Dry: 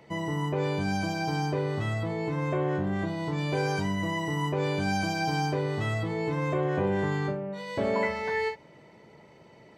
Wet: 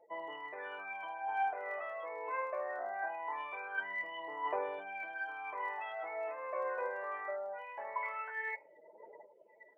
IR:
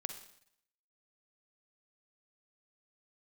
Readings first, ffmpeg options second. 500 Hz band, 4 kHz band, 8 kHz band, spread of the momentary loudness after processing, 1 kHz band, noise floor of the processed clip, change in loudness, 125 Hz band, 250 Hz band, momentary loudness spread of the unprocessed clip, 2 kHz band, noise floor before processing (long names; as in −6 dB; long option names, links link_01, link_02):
−11.0 dB, −18.0 dB, below −35 dB, 7 LU, −5.0 dB, −63 dBFS, −10.5 dB, below −40 dB, −31.0 dB, 4 LU, −5.5 dB, −54 dBFS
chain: -af "lowpass=frequency=2400:width=0.5412,lowpass=frequency=2400:width=1.3066,afftdn=noise_reduction=34:noise_floor=-46,highpass=frequency=620:width=0.5412,highpass=frequency=620:width=1.3066,areverse,acompressor=threshold=-46dB:ratio=6,areverse,aphaser=in_gain=1:out_gain=1:delay=2:decay=0.71:speed=0.22:type=triangular,volume=5.5dB"